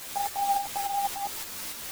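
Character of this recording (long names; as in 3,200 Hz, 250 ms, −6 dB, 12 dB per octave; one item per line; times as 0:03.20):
a quantiser's noise floor 6 bits, dither triangular
tremolo saw up 3.5 Hz, depth 50%
a shimmering, thickened sound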